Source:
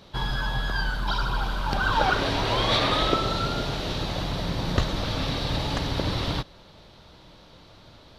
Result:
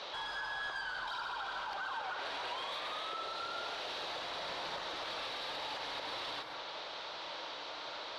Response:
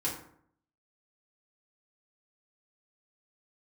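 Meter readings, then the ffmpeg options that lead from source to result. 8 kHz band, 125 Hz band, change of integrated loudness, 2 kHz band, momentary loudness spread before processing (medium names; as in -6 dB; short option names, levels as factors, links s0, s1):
-13.0 dB, -35.5 dB, -13.5 dB, -10.0 dB, 7 LU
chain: -filter_complex "[0:a]acrossover=split=410 7600:gain=0.0891 1 0.0891[s0][s1][s2];[s0][s1][s2]amix=inputs=3:normalize=0,bandreject=f=67.33:t=h:w=4,bandreject=f=134.66:t=h:w=4,bandreject=f=201.99:t=h:w=4,bandreject=f=269.32:t=h:w=4,bandreject=f=336.65:t=h:w=4,bandreject=f=403.98:t=h:w=4,bandreject=f=471.31:t=h:w=4,bandreject=f=538.64:t=h:w=4,bandreject=f=605.97:t=h:w=4,bandreject=f=673.3:t=h:w=4,bandreject=f=740.63:t=h:w=4,bandreject=f=807.96:t=h:w=4,bandreject=f=875.29:t=h:w=4,bandreject=f=942.62:t=h:w=4,bandreject=f=1009.95:t=h:w=4,bandreject=f=1077.28:t=h:w=4,bandreject=f=1144.61:t=h:w=4,bandreject=f=1211.94:t=h:w=4,bandreject=f=1279.27:t=h:w=4,bandreject=f=1346.6:t=h:w=4,bandreject=f=1413.93:t=h:w=4,bandreject=f=1481.26:t=h:w=4,bandreject=f=1548.59:t=h:w=4,bandreject=f=1615.92:t=h:w=4,bandreject=f=1683.25:t=h:w=4,bandreject=f=1750.58:t=h:w=4,bandreject=f=1817.91:t=h:w=4,bandreject=f=1885.24:t=h:w=4,bandreject=f=1952.57:t=h:w=4,bandreject=f=2019.9:t=h:w=4,bandreject=f=2087.23:t=h:w=4,bandreject=f=2154.56:t=h:w=4,bandreject=f=2221.89:t=h:w=4,bandreject=f=2289.22:t=h:w=4,bandreject=f=2356.55:t=h:w=4,acompressor=threshold=0.0126:ratio=8,asplit=2[s3][s4];[s4]highpass=f=720:p=1,volume=4.47,asoftclip=type=tanh:threshold=0.0531[s5];[s3][s5]amix=inputs=2:normalize=0,lowpass=f=3500:p=1,volume=0.501,alimiter=level_in=5.31:limit=0.0631:level=0:latency=1:release=179,volume=0.188,asplit=2[s6][s7];[1:a]atrim=start_sample=2205,highshelf=f=10000:g=8.5,adelay=130[s8];[s7][s8]afir=irnorm=-1:irlink=0,volume=0.224[s9];[s6][s9]amix=inputs=2:normalize=0,volume=1.68"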